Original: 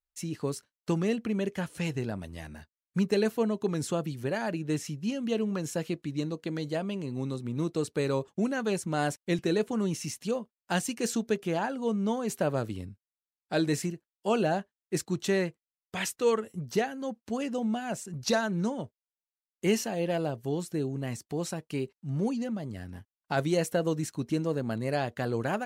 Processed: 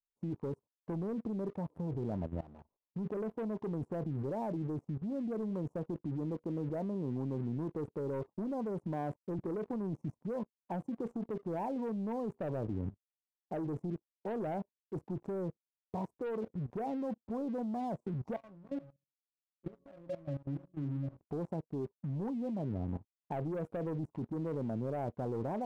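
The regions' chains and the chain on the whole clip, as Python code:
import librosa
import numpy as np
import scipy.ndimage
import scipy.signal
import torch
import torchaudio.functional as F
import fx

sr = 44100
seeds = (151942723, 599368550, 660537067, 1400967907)

y = fx.chain(x, sr, fx.lowpass(hz=9200.0, slope=12),
    fx.low_shelf(hz=360.0, db=-7.0),
    fx.sustainer(db_per_s=140.0), at=(2.41, 3.06))
y = fx.chain(y, sr, fx.hum_notches(base_hz=60, count=7),
    fx.octave_resonator(note='C#', decay_s=0.23),
    fx.echo_single(ms=72, db=-23.5), at=(18.36, 21.19))
y = scipy.signal.sosfilt(scipy.signal.ellip(4, 1.0, 40, 1000.0, 'lowpass', fs=sr, output='sos'), y)
y = fx.leveller(y, sr, passes=2)
y = fx.level_steps(y, sr, step_db=18)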